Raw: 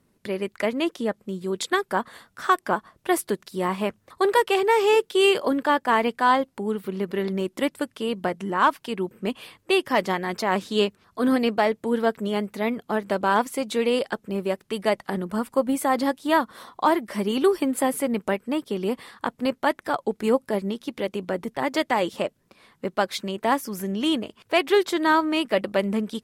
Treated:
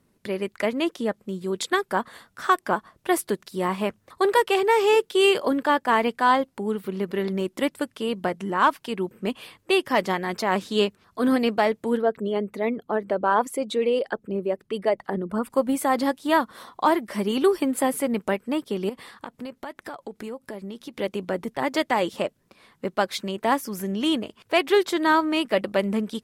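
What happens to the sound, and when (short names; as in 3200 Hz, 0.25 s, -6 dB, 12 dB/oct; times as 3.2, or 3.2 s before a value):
11.97–15.5 formant sharpening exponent 1.5
18.89–20.94 compressor, threshold -32 dBFS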